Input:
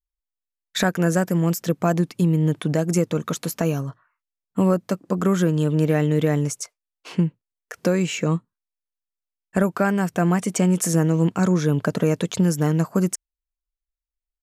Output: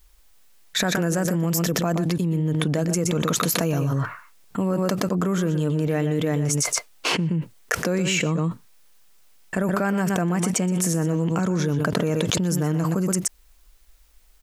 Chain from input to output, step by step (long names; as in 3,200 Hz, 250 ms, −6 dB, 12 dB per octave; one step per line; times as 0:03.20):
single-tap delay 122 ms −12 dB
envelope flattener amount 100%
level −7 dB